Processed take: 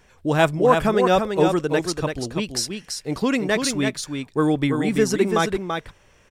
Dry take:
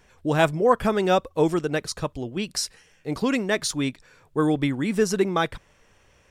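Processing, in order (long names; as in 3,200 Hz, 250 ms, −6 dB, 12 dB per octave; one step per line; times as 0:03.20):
single-tap delay 335 ms −5.5 dB
level +2 dB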